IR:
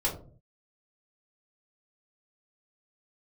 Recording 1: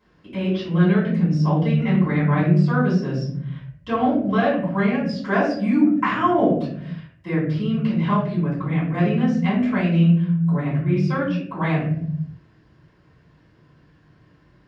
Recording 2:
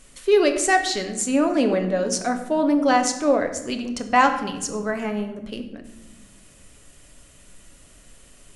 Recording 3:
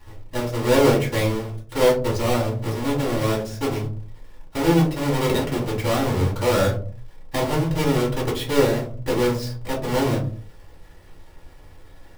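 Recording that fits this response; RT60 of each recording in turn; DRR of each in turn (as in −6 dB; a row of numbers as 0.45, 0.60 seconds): 3; 0.70, 1.1, 0.45 seconds; −14.0, 5.5, −5.5 decibels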